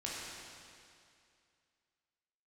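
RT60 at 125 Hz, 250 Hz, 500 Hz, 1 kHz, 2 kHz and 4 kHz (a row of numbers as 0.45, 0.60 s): 2.4, 2.4, 2.4, 2.4, 2.4, 2.3 s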